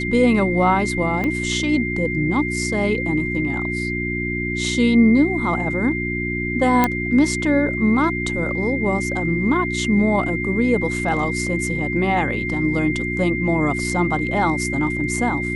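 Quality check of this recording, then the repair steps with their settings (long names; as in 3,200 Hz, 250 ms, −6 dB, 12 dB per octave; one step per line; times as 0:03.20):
mains hum 60 Hz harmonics 6 −26 dBFS
whistle 2,100 Hz −25 dBFS
0:01.24: click −12 dBFS
0:06.84: click −3 dBFS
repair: click removal
hum removal 60 Hz, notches 6
notch filter 2,100 Hz, Q 30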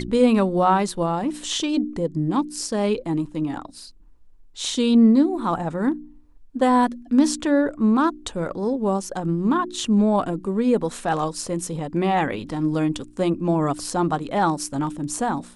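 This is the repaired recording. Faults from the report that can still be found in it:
0:01.24: click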